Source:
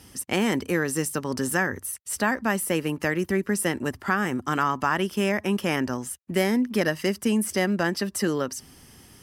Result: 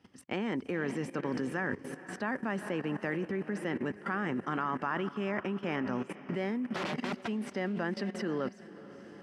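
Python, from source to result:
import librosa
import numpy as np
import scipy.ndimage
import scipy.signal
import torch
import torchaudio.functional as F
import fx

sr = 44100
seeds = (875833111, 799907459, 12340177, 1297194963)

y = fx.low_shelf(x, sr, hz=290.0, db=3.0)
y = fx.overflow_wrap(y, sr, gain_db=24.0, at=(6.73, 7.27), fade=0.02)
y = fx.echo_diffused(y, sr, ms=463, feedback_pct=53, wet_db=-13.5)
y = fx.level_steps(y, sr, step_db=16)
y = fx.bandpass_edges(y, sr, low_hz=150.0, high_hz=2800.0)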